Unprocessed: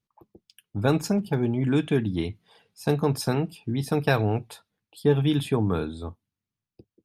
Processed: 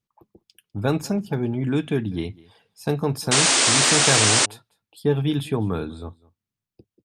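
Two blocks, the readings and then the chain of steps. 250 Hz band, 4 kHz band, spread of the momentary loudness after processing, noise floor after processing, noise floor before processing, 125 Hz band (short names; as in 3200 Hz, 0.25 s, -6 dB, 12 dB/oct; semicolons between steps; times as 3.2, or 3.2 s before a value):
0.0 dB, +16.0 dB, 16 LU, under -85 dBFS, under -85 dBFS, 0.0 dB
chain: echo 0.2 s -23 dB; painted sound noise, 3.31–4.46, 230–9500 Hz -18 dBFS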